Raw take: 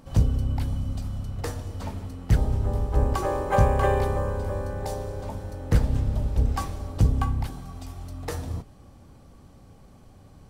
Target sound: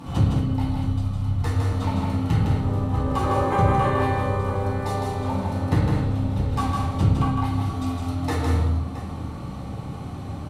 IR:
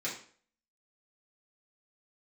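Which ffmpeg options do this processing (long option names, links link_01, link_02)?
-filter_complex "[0:a]asplit=3[link_01][link_02][link_03];[link_01]afade=type=out:start_time=0.58:duration=0.02[link_04];[link_02]asubboost=boost=6:cutoff=150,afade=type=in:start_time=0.58:duration=0.02,afade=type=out:start_time=1.49:duration=0.02[link_05];[link_03]afade=type=in:start_time=1.49:duration=0.02[link_06];[link_04][link_05][link_06]amix=inputs=3:normalize=0,acompressor=threshold=-44dB:ratio=2,aecho=1:1:159|209|670:0.631|0.282|0.178[link_07];[1:a]atrim=start_sample=2205,asetrate=25137,aresample=44100[link_08];[link_07][link_08]afir=irnorm=-1:irlink=0,volume=8dB"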